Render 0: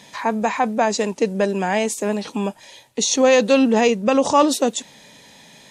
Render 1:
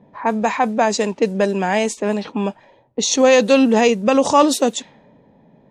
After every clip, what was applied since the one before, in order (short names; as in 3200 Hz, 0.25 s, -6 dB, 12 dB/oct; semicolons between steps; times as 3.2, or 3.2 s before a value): low-pass opened by the level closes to 500 Hz, open at -15 dBFS; gain +2 dB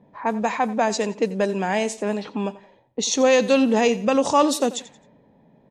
feedback echo 88 ms, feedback 33%, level -17.5 dB; gain -4.5 dB